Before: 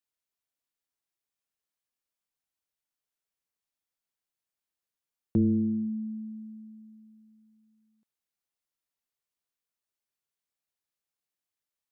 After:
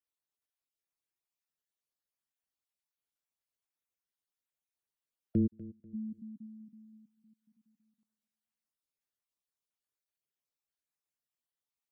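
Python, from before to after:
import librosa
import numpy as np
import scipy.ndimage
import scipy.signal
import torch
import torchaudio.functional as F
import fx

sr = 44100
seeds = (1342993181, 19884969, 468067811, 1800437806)

y = fx.spec_dropout(x, sr, seeds[0], share_pct=32)
y = fx.gate_flip(y, sr, shuts_db=-31.0, range_db=-31, at=(5.46, 5.93), fade=0.02)
y = fx.echo_feedback(y, sr, ms=245, feedback_pct=32, wet_db=-17.5)
y = F.gain(torch.from_numpy(y), -4.0).numpy()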